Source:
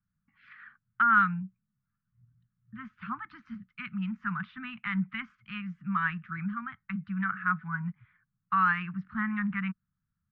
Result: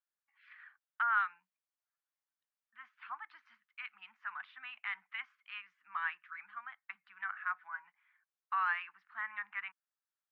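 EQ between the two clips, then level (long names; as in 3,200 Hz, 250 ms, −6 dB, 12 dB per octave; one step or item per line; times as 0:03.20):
Butterworth high-pass 570 Hz 36 dB per octave
spectral tilt −2 dB per octave
parametric band 1,300 Hz −9 dB 0.67 octaves
0.0 dB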